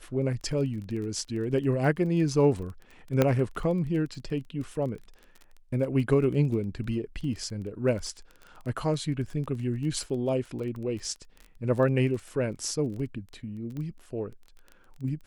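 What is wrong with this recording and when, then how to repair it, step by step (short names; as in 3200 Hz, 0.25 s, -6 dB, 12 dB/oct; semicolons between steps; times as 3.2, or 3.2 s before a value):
crackle 21/s -36 dBFS
3.22 pop -9 dBFS
13.77 pop -27 dBFS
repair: de-click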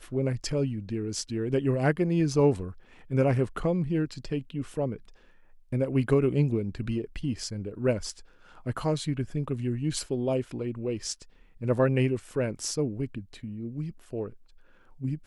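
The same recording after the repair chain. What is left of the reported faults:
none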